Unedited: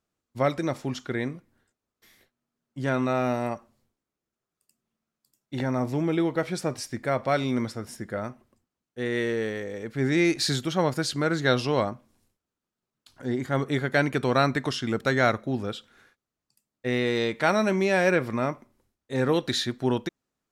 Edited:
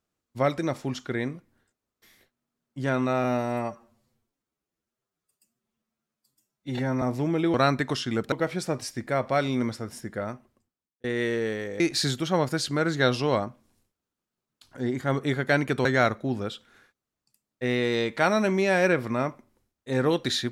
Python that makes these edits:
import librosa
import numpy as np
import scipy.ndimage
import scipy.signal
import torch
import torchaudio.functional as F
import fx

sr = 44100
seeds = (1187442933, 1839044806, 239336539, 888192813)

y = fx.edit(x, sr, fx.stretch_span(start_s=3.24, length_s=2.52, factor=1.5),
    fx.fade_out_span(start_s=8.02, length_s=0.98, curve='qsin'),
    fx.cut(start_s=9.76, length_s=0.49),
    fx.move(start_s=14.3, length_s=0.78, to_s=6.28), tone=tone)